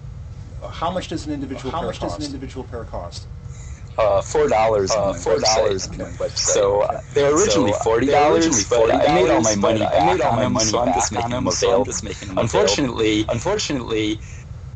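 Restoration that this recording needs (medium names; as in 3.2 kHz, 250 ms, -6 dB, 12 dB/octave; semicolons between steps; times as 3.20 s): noise print and reduce 30 dB; inverse comb 915 ms -3 dB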